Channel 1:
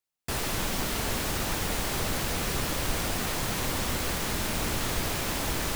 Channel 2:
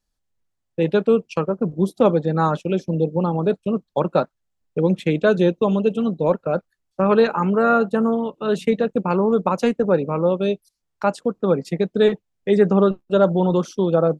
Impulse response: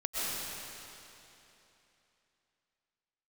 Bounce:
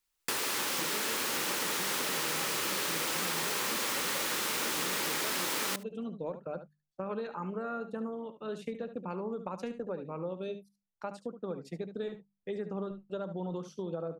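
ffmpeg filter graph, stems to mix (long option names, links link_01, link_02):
-filter_complex "[0:a]highpass=390,equalizer=frequency=680:width_type=o:width=0.34:gain=-11.5,volume=2.5dB,asplit=3[link_01][link_02][link_03];[link_02]volume=-4.5dB[link_04];[link_03]volume=-19dB[link_05];[1:a]bandreject=frequency=50:width_type=h:width=6,bandreject=frequency=100:width_type=h:width=6,bandreject=frequency=150:width_type=h:width=6,bandreject=frequency=200:width_type=h:width=6,acompressor=threshold=-17dB:ratio=6,volume=-15.5dB,asplit=2[link_06][link_07];[link_07]volume=-11.5dB[link_08];[2:a]atrim=start_sample=2205[link_09];[link_04][link_09]afir=irnorm=-1:irlink=0[link_10];[link_05][link_08]amix=inputs=2:normalize=0,aecho=0:1:72:1[link_11];[link_01][link_06][link_10][link_11]amix=inputs=4:normalize=0,acompressor=threshold=-30dB:ratio=6"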